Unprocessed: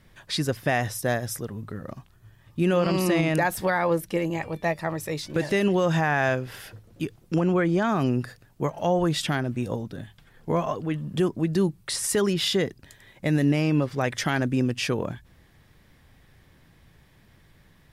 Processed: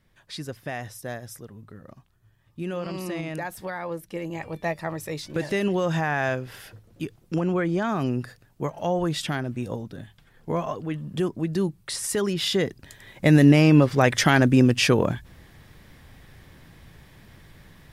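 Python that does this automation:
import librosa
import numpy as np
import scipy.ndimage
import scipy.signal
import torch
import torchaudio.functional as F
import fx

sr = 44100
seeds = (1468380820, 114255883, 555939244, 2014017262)

y = fx.gain(x, sr, db=fx.line((4.0, -9.0), (4.54, -2.0), (12.31, -2.0), (13.27, 7.0)))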